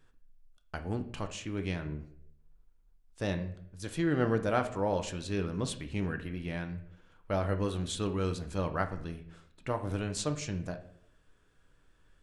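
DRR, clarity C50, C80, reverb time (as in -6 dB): 6.5 dB, 12.0 dB, 15.0 dB, 0.65 s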